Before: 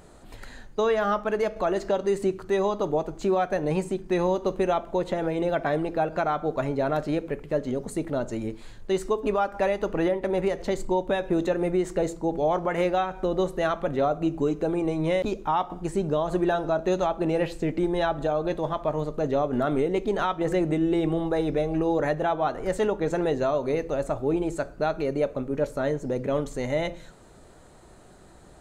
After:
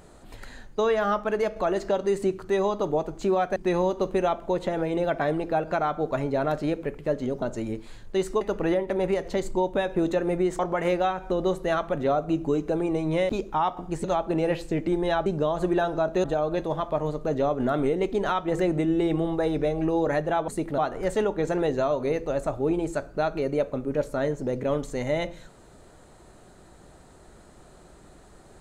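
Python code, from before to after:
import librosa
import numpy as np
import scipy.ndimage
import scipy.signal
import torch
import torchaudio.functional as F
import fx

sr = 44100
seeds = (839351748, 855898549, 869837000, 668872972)

y = fx.edit(x, sr, fx.cut(start_s=3.56, length_s=0.45),
    fx.move(start_s=7.87, length_s=0.3, to_s=22.41),
    fx.cut(start_s=9.16, length_s=0.59),
    fx.cut(start_s=11.93, length_s=0.59),
    fx.move(start_s=15.97, length_s=0.98, to_s=18.17), tone=tone)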